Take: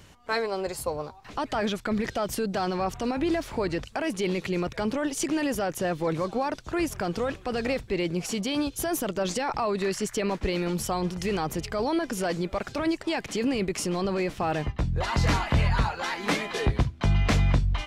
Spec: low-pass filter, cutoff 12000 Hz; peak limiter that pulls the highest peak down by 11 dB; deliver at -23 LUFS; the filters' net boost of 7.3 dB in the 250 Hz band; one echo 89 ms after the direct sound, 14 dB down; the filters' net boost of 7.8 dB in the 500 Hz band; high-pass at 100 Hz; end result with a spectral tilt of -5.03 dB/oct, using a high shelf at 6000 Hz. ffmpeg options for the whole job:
-af "highpass=100,lowpass=12k,equalizer=f=250:t=o:g=7.5,equalizer=f=500:t=o:g=7.5,highshelf=f=6k:g=8.5,alimiter=limit=-16dB:level=0:latency=1,aecho=1:1:89:0.2,volume=2dB"

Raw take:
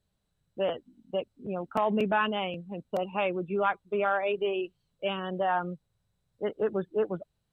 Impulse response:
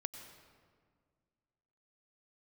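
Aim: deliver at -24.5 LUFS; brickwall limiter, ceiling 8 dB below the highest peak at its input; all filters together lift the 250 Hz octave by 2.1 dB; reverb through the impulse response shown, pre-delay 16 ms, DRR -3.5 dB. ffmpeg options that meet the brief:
-filter_complex "[0:a]equalizer=f=250:t=o:g=3,alimiter=limit=-23dB:level=0:latency=1,asplit=2[a][b];[1:a]atrim=start_sample=2205,adelay=16[c];[b][c]afir=irnorm=-1:irlink=0,volume=5dB[d];[a][d]amix=inputs=2:normalize=0,volume=4.5dB"

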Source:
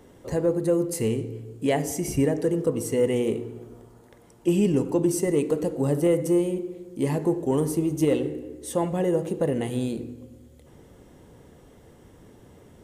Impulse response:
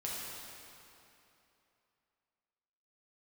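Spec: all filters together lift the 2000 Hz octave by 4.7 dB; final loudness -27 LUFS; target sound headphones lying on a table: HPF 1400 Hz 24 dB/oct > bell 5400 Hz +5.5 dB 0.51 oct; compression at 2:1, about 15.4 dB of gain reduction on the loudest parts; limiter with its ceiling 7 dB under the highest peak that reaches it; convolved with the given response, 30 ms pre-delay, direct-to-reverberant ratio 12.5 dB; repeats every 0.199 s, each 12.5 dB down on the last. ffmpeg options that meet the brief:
-filter_complex "[0:a]equalizer=f=2k:t=o:g=5.5,acompressor=threshold=-47dB:ratio=2,alimiter=level_in=9dB:limit=-24dB:level=0:latency=1,volume=-9dB,aecho=1:1:199|398|597:0.237|0.0569|0.0137,asplit=2[a][b];[1:a]atrim=start_sample=2205,adelay=30[c];[b][c]afir=irnorm=-1:irlink=0,volume=-15dB[d];[a][d]amix=inputs=2:normalize=0,highpass=f=1.4k:w=0.5412,highpass=f=1.4k:w=1.3066,equalizer=f=5.4k:t=o:w=0.51:g=5.5,volume=24.5dB"

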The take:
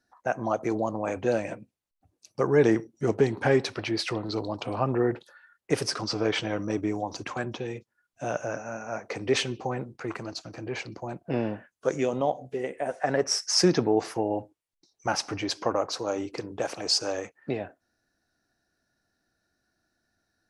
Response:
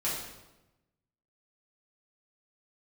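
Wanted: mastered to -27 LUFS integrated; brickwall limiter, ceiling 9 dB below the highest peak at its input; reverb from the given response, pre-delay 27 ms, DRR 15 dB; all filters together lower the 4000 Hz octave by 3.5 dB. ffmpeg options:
-filter_complex "[0:a]equalizer=f=4k:t=o:g=-5,alimiter=limit=-18dB:level=0:latency=1,asplit=2[a][b];[1:a]atrim=start_sample=2205,adelay=27[c];[b][c]afir=irnorm=-1:irlink=0,volume=-22dB[d];[a][d]amix=inputs=2:normalize=0,volume=4.5dB"

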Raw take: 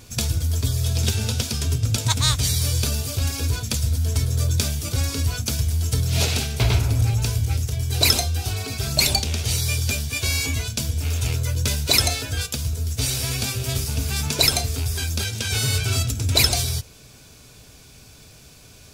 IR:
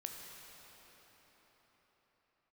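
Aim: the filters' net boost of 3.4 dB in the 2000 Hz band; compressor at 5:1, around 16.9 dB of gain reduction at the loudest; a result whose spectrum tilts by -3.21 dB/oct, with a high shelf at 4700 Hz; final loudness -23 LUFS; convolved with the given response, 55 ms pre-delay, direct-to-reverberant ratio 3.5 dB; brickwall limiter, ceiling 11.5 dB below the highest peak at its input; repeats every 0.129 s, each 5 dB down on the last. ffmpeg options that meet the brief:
-filter_complex "[0:a]equalizer=f=2k:t=o:g=3.5,highshelf=f=4.7k:g=3.5,acompressor=threshold=-31dB:ratio=5,alimiter=limit=-23.5dB:level=0:latency=1,aecho=1:1:129|258|387|516|645|774|903:0.562|0.315|0.176|0.0988|0.0553|0.031|0.0173,asplit=2[a][b];[1:a]atrim=start_sample=2205,adelay=55[c];[b][c]afir=irnorm=-1:irlink=0,volume=-2dB[d];[a][d]amix=inputs=2:normalize=0,volume=8.5dB"

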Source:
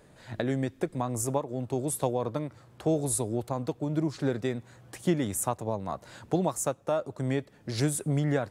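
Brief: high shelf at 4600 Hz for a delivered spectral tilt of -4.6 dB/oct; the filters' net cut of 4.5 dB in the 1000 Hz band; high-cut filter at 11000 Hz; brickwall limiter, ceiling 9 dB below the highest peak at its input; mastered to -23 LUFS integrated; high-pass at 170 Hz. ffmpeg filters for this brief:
-af "highpass=170,lowpass=11k,equalizer=f=1k:t=o:g=-6.5,highshelf=f=4.6k:g=7.5,volume=11dB,alimiter=limit=-11.5dB:level=0:latency=1"

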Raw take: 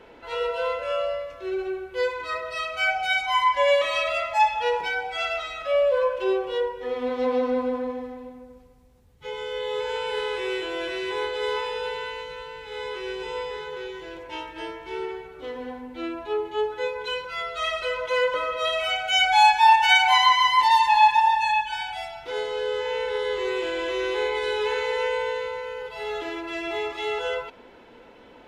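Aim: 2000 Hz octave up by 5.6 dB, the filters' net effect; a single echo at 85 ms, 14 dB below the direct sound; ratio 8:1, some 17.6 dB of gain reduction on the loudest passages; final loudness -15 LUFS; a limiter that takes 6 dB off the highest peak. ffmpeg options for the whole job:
-af "equalizer=f=2k:t=o:g=7,acompressor=threshold=-28dB:ratio=8,alimiter=level_in=1.5dB:limit=-24dB:level=0:latency=1,volume=-1.5dB,aecho=1:1:85:0.2,volume=18dB"

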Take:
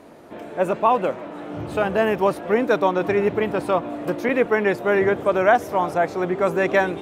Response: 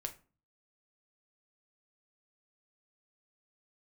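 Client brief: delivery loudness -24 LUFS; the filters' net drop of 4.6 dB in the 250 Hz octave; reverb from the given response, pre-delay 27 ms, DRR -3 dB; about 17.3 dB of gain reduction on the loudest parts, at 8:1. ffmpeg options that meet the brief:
-filter_complex "[0:a]equalizer=f=250:t=o:g=-7,acompressor=threshold=-30dB:ratio=8,asplit=2[a][b];[1:a]atrim=start_sample=2205,adelay=27[c];[b][c]afir=irnorm=-1:irlink=0,volume=4.5dB[d];[a][d]amix=inputs=2:normalize=0,volume=5.5dB"

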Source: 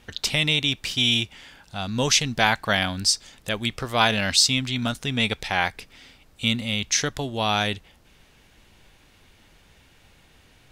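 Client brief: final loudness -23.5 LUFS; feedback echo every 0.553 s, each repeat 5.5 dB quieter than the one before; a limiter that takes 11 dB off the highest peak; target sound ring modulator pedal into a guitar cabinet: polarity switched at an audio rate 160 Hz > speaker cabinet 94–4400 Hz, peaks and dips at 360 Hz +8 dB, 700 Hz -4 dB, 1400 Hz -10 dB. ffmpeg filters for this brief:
-af "alimiter=limit=-14.5dB:level=0:latency=1,aecho=1:1:553|1106|1659|2212|2765|3318|3871:0.531|0.281|0.149|0.079|0.0419|0.0222|0.0118,aeval=exprs='val(0)*sgn(sin(2*PI*160*n/s))':c=same,highpass=94,equalizer=f=360:t=q:w=4:g=8,equalizer=f=700:t=q:w=4:g=-4,equalizer=f=1.4k:t=q:w=4:g=-10,lowpass=f=4.4k:w=0.5412,lowpass=f=4.4k:w=1.3066,volume=3.5dB"

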